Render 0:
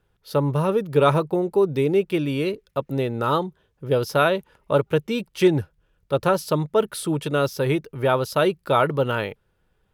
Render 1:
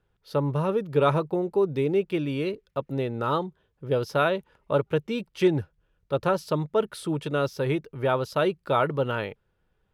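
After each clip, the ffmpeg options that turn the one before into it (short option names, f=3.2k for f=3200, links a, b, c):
-af "highshelf=f=8.5k:g=-12,volume=-4dB"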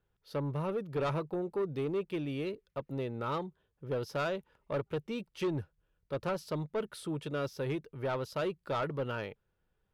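-af "asoftclip=type=tanh:threshold=-20dB,volume=-7dB"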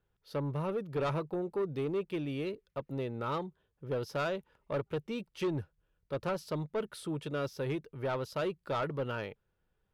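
-af anull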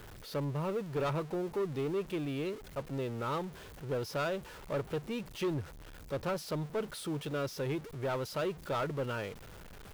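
-af "aeval=exprs='val(0)+0.5*0.00794*sgn(val(0))':c=same,volume=-1.5dB"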